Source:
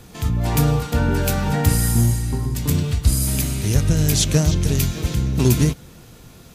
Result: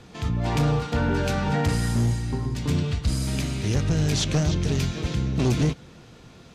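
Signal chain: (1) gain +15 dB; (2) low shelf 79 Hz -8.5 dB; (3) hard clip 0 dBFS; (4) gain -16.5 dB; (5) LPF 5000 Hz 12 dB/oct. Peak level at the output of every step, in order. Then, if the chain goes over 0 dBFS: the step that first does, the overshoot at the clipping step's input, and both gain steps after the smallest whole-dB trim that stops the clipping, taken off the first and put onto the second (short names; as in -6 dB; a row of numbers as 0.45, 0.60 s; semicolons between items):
+9.0, +9.0, 0.0, -16.5, -16.0 dBFS; step 1, 9.0 dB; step 1 +6 dB, step 4 -7.5 dB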